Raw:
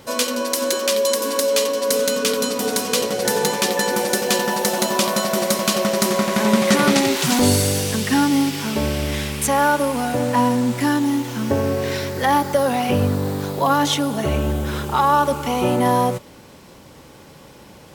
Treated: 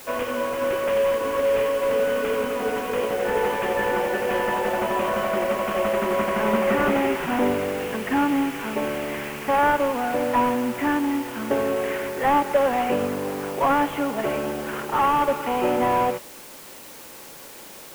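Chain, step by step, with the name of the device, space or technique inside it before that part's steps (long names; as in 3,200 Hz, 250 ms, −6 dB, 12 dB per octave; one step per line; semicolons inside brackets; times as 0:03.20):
army field radio (band-pass filter 310–3,300 Hz; variable-slope delta modulation 16 kbit/s; white noise bed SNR 20 dB)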